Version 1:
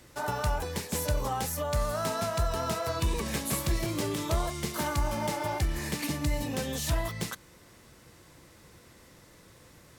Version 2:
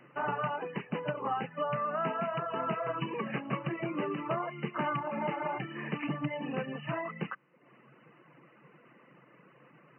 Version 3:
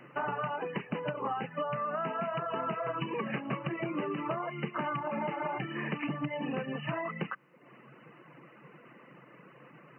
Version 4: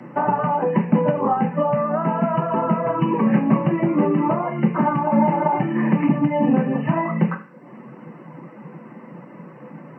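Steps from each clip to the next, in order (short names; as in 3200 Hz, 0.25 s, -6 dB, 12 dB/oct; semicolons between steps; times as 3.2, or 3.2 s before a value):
reverb removal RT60 0.84 s; bell 1200 Hz +6 dB 0.24 oct; FFT band-pass 120–3000 Hz
compressor, threshold -35 dBFS, peak gain reduction 8 dB; gain +4.5 dB
reverb RT60 0.45 s, pre-delay 3 ms, DRR 2.5 dB; gain +3.5 dB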